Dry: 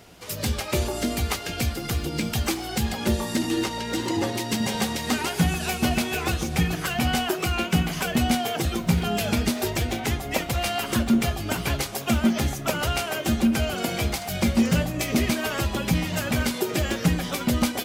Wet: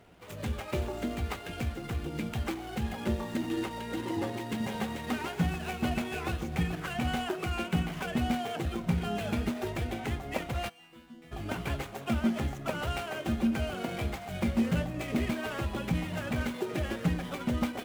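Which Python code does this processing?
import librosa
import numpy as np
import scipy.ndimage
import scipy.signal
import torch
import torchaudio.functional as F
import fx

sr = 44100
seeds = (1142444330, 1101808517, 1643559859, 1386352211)

y = scipy.signal.medfilt(x, 9)
y = fx.resonator_bank(y, sr, root=52, chord='fifth', decay_s=0.71, at=(10.68, 11.31), fade=0.02)
y = y * librosa.db_to_amplitude(-7.0)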